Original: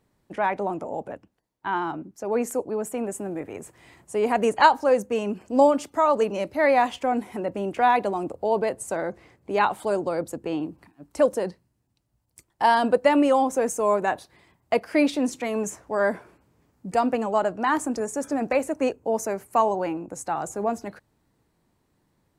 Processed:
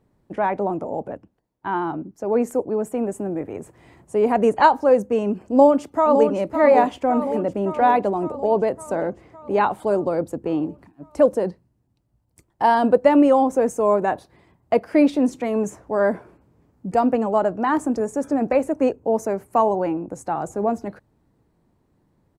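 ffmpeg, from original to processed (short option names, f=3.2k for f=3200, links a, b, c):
-filter_complex "[0:a]asplit=2[a][b];[b]afade=t=in:st=5.39:d=0.01,afade=t=out:st=6.31:d=0.01,aecho=0:1:560|1120|1680|2240|2800|3360|3920|4480|5040:0.446684|0.290344|0.188724|0.12267|0.0797358|0.0518283|0.0336884|0.0218974|0.0142333[c];[a][c]amix=inputs=2:normalize=0,tiltshelf=f=1.3k:g=6"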